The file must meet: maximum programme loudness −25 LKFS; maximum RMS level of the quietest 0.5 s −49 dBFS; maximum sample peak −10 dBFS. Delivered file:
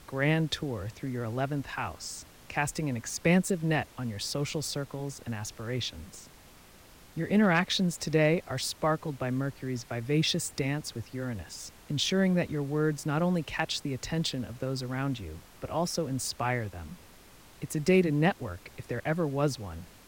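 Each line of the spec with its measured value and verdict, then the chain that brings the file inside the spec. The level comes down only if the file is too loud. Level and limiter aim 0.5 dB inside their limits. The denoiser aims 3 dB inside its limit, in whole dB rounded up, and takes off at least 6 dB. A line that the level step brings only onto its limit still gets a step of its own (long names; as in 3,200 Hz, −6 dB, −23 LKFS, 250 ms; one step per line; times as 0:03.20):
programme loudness −30.5 LKFS: in spec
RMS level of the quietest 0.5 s −54 dBFS: in spec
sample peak −13.5 dBFS: in spec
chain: no processing needed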